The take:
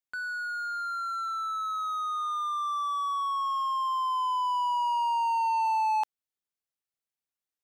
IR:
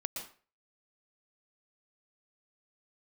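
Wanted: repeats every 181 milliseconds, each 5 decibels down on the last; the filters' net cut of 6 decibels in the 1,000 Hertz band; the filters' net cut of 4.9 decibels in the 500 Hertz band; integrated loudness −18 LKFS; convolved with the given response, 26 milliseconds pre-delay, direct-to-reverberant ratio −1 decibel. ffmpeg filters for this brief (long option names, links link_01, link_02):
-filter_complex "[0:a]equalizer=frequency=500:width_type=o:gain=-4,equalizer=frequency=1000:width_type=o:gain=-6,aecho=1:1:181|362|543|724|905|1086|1267:0.562|0.315|0.176|0.0988|0.0553|0.031|0.0173,asplit=2[link_01][link_02];[1:a]atrim=start_sample=2205,adelay=26[link_03];[link_02][link_03]afir=irnorm=-1:irlink=0,volume=0dB[link_04];[link_01][link_04]amix=inputs=2:normalize=0,volume=12dB"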